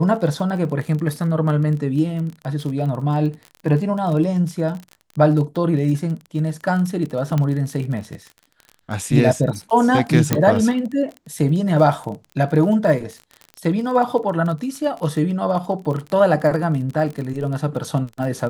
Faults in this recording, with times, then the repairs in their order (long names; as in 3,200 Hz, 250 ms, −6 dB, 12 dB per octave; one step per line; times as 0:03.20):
surface crackle 32 per second −27 dBFS
0:07.38: click −10 dBFS
0:10.33: click −2 dBFS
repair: click removal